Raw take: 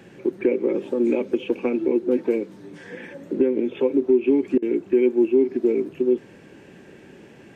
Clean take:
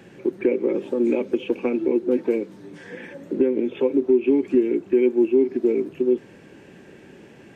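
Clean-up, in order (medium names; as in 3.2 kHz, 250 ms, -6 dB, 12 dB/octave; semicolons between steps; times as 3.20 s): interpolate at 4.58 s, 42 ms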